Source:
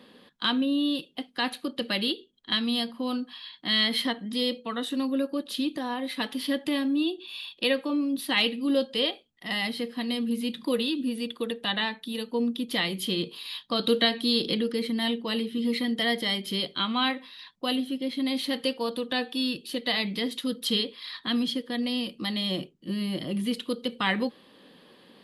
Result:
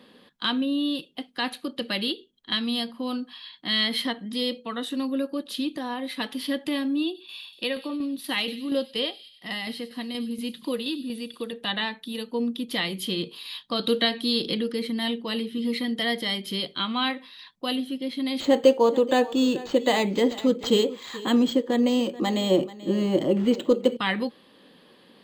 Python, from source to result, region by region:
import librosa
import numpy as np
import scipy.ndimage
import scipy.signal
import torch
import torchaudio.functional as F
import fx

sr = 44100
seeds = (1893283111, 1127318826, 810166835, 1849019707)

y = fx.chain(x, sr, fx.echo_wet_highpass(ms=96, feedback_pct=62, hz=4800.0, wet_db=-8.0),
    fx.tremolo_shape(shape='saw_down', hz=4.2, depth_pct=50), at=(7.05, 11.53))
y = fx.chain(y, sr, fx.small_body(hz=(390.0, 550.0, 820.0), ring_ms=20, db=14),
    fx.echo_single(ms=435, db=-17.5),
    fx.resample_linear(factor=4), at=(18.4, 23.97))